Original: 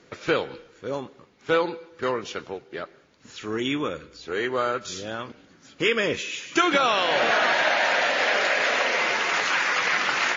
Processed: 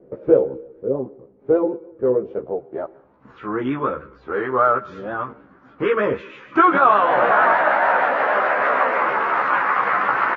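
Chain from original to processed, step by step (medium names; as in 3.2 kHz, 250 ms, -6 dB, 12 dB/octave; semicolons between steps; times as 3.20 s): treble shelf 5 kHz -6.5 dB; doubling 15 ms -2 dB; low-pass sweep 500 Hz -> 1.2 kHz, 2.29–3.40 s; vibrato 6.5 Hz 50 cents; trim +1.5 dB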